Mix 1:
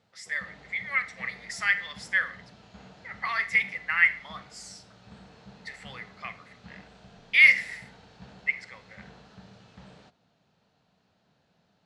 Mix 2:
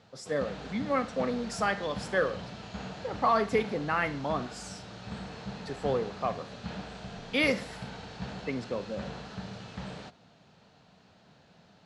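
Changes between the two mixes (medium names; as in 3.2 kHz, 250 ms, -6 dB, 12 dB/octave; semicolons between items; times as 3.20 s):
speech: remove resonant high-pass 2 kHz, resonance Q 7.3; background +10.0 dB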